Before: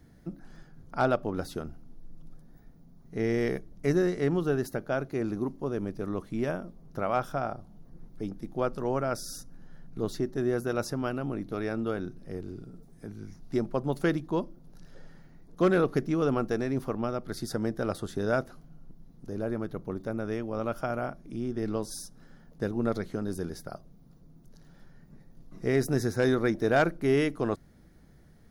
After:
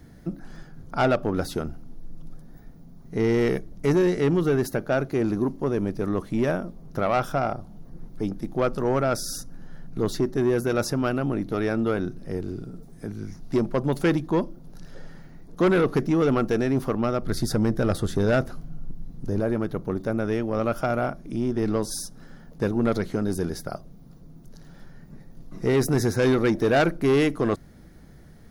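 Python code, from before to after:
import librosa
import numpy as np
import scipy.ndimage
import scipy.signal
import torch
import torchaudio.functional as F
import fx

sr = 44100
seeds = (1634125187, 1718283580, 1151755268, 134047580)

y = fx.low_shelf(x, sr, hz=150.0, db=9.0, at=(17.22, 19.4))
y = 10.0 ** (-22.5 / 20.0) * np.tanh(y / 10.0 ** (-22.5 / 20.0))
y = F.gain(torch.from_numpy(y), 8.0).numpy()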